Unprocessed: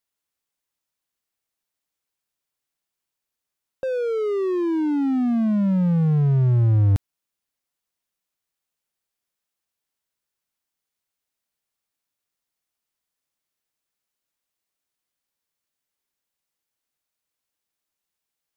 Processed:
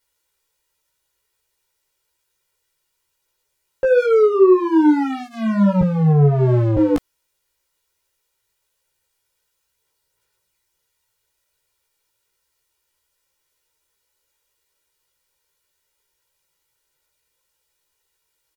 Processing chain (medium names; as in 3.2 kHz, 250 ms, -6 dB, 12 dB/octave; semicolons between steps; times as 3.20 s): 5.81–6.77 s: high-pass 99 Hz 24 dB/octave; comb 2.1 ms, depth 100%; sine folder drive 6 dB, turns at -10.5 dBFS; chorus voices 4, 1.1 Hz, delay 16 ms, depth 3 ms; trim +2 dB